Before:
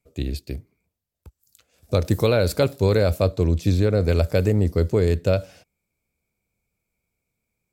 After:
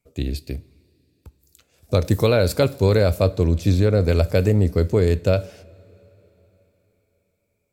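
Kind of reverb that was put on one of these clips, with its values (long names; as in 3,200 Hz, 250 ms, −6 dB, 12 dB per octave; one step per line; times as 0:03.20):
coupled-rooms reverb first 0.33 s, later 4.1 s, from −18 dB, DRR 17 dB
level +1.5 dB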